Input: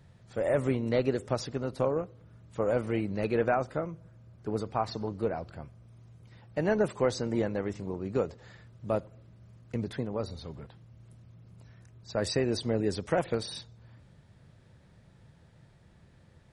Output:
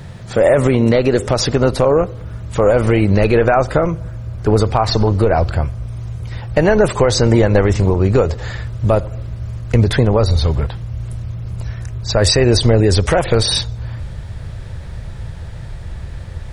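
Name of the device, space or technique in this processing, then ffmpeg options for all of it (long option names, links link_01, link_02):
mastering chain: -af "asubboost=boost=7.5:cutoff=66,equalizer=frequency=280:width_type=o:width=0.41:gain=-2.5,acompressor=threshold=-31dB:ratio=2.5,asoftclip=type=hard:threshold=-21.5dB,alimiter=level_in=26.5dB:limit=-1dB:release=50:level=0:latency=1,volume=-2.5dB"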